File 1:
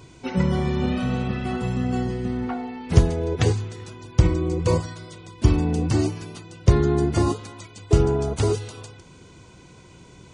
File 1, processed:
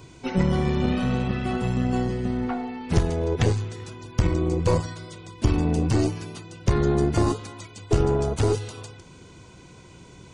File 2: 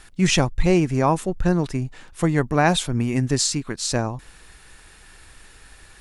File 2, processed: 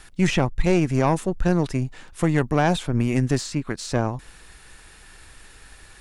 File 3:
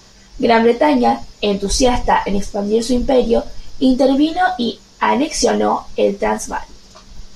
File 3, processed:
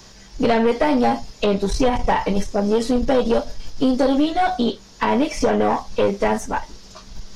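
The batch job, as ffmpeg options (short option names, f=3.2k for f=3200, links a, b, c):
-filter_complex "[0:a]acrossover=split=720|2700[a][b][c];[a]acompressor=threshold=-15dB:ratio=4[d];[b]acompressor=threshold=-23dB:ratio=4[e];[c]acompressor=threshold=-36dB:ratio=4[f];[d][e][f]amix=inputs=3:normalize=0,aeval=exprs='(tanh(4.47*val(0)+0.5)-tanh(0.5))/4.47':c=same,volume=2.5dB"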